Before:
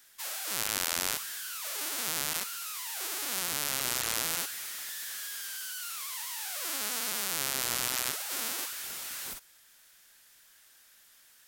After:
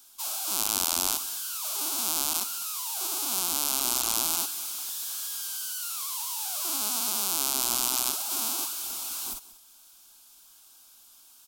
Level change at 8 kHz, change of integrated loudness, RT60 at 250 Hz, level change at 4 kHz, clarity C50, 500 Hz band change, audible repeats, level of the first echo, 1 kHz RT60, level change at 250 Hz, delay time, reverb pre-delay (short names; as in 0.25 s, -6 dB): +5.5 dB, +5.0 dB, none, +3.5 dB, none, +0.5 dB, 1, -18.5 dB, none, +5.0 dB, 0.189 s, none